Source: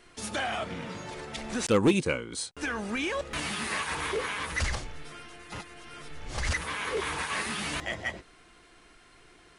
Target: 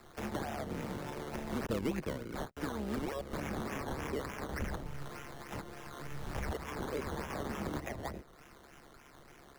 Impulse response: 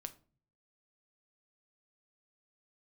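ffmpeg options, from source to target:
-filter_complex "[0:a]tremolo=f=140:d=0.824,acrusher=samples=14:mix=1:aa=0.000001:lfo=1:lforange=8.4:lforate=3.4,acrossover=split=290|610|2500[link_01][link_02][link_03][link_04];[link_01]acompressor=threshold=-40dB:ratio=4[link_05];[link_02]acompressor=threshold=-45dB:ratio=4[link_06];[link_03]acompressor=threshold=-49dB:ratio=4[link_07];[link_04]acompressor=threshold=-56dB:ratio=4[link_08];[link_05][link_06][link_07][link_08]amix=inputs=4:normalize=0,volume=3.5dB"

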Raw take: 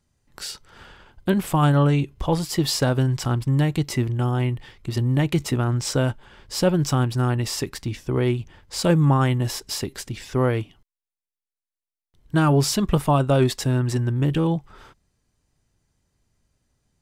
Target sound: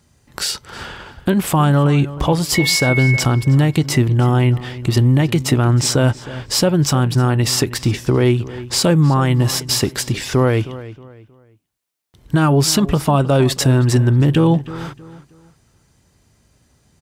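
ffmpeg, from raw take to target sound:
ffmpeg -i in.wav -filter_complex "[0:a]highpass=55,asplit=2[link_01][link_02];[link_02]acompressor=threshold=-35dB:ratio=6,volume=1.5dB[link_03];[link_01][link_03]amix=inputs=2:normalize=0,alimiter=limit=-14dB:level=0:latency=1:release=182,asettb=1/sr,asplit=3[link_04][link_05][link_06];[link_04]atrim=end=2.554[link_07];[link_05]atrim=start=2.55:end=3.2,asetpts=PTS-STARTPTS,afade=type=in:duration=0.004:curve=qsin,afade=type=out:start_time=0.646:duration=0.004:curve=qsin,aeval=exprs='val(0)+0.0447*sin(2*PI*2200*n/s)':channel_layout=same[link_08];[link_06]atrim=start=3.196[link_09];[link_07][link_08]acrossfade=duration=0.004:curve1=hsin:curve2=qsin[link_10];[link_10][link_09]acrossfade=duration=0.004:curve1=qsin:curve2=hsin,asplit=2[link_11][link_12];[link_12]adelay=315,lowpass=frequency=3400:poles=1,volume=-16dB,asplit=2[link_13][link_14];[link_14]adelay=315,lowpass=frequency=3400:poles=1,volume=0.33,asplit=2[link_15][link_16];[link_16]adelay=315,lowpass=frequency=3400:poles=1,volume=0.33[link_17];[link_11][link_13][link_15][link_17]amix=inputs=4:normalize=0,volume=8dB" out.wav

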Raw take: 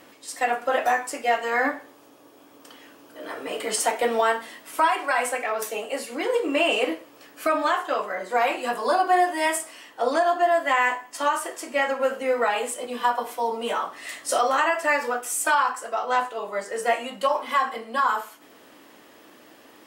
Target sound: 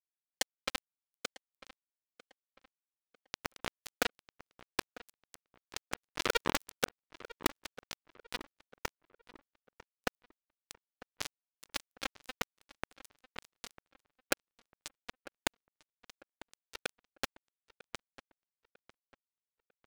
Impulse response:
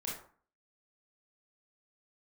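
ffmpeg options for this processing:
-filter_complex "[0:a]acrossover=split=3300[link_01][link_02];[link_02]acompressor=threshold=-43dB:ratio=4:attack=1:release=60[link_03];[link_01][link_03]amix=inputs=2:normalize=0,lowpass=5000,acompressor=threshold=-36dB:ratio=4,equalizer=frequency=250:width=0.98:gain=15,aecho=1:1:2.2:0.59,acrusher=bits=2:mix=0:aa=0.5,asoftclip=type=hard:threshold=-32dB,aemphasis=mode=production:type=75fm,asplit=2[link_04][link_05];[link_05]adelay=948,lowpass=frequency=2600:poles=1,volume=-17dB,asplit=2[link_06][link_07];[link_07]adelay=948,lowpass=frequency=2600:poles=1,volume=0.38,asplit=2[link_08][link_09];[link_09]adelay=948,lowpass=frequency=2600:poles=1,volume=0.38[link_10];[link_04][link_06][link_08][link_10]amix=inputs=4:normalize=0,volume=17dB"

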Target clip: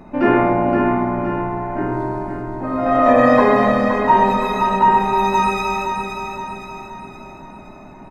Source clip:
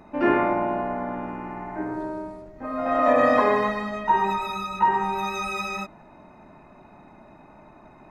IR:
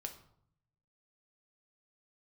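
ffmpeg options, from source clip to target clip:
-filter_complex "[0:a]aecho=1:1:519|1038|1557|2076|2595|3114:0.501|0.246|0.12|0.059|0.0289|0.0142,asplit=2[link_01][link_02];[1:a]atrim=start_sample=2205,lowshelf=frequency=470:gain=10[link_03];[link_02][link_03]afir=irnorm=-1:irlink=0,volume=3dB[link_04];[link_01][link_04]amix=inputs=2:normalize=0,volume=-1.5dB"

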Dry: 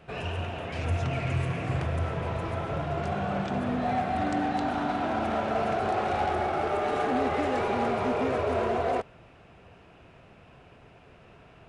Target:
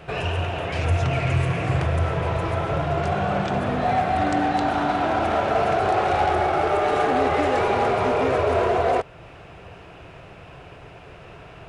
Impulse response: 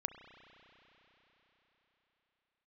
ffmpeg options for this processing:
-filter_complex "[0:a]equalizer=frequency=230:width=4.7:gain=-11,asplit=2[link_01][link_02];[link_02]acompressor=threshold=-41dB:ratio=6,volume=-2.5dB[link_03];[link_01][link_03]amix=inputs=2:normalize=0,volume=6dB"

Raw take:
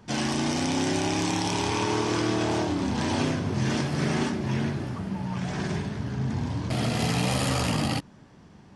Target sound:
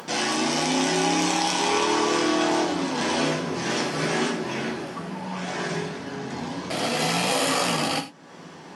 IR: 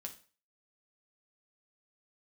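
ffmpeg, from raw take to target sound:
-filter_complex "[0:a]acompressor=mode=upward:threshold=-32dB:ratio=2.5,highpass=330[link_01];[1:a]atrim=start_sample=2205,afade=type=out:start_time=0.15:duration=0.01,atrim=end_sample=7056,asetrate=38367,aresample=44100[link_02];[link_01][link_02]afir=irnorm=-1:irlink=0,volume=8.5dB"

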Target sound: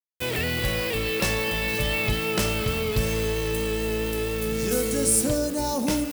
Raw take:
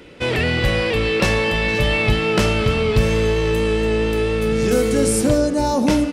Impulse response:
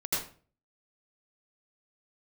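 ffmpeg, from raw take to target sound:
-af "aeval=exprs='val(0)*gte(abs(val(0)),0.0266)':channel_layout=same,aemphasis=mode=production:type=50fm,volume=-8dB"

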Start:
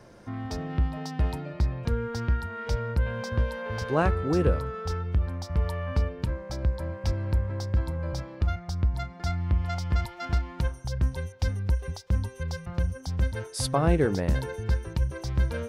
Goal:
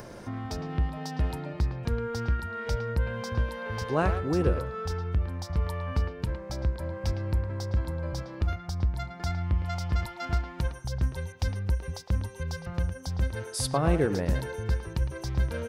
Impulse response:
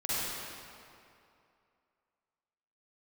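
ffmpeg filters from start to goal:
-filter_complex "[0:a]highshelf=frequency=9200:gain=5,asplit=2[link_01][link_02];[link_02]acompressor=mode=upward:threshold=-25dB:ratio=2.5,volume=-1dB[link_03];[link_01][link_03]amix=inputs=2:normalize=0,asplit=2[link_04][link_05];[link_05]adelay=110,highpass=300,lowpass=3400,asoftclip=type=hard:threshold=-13.5dB,volume=-8dB[link_06];[link_04][link_06]amix=inputs=2:normalize=0,volume=-7.5dB"

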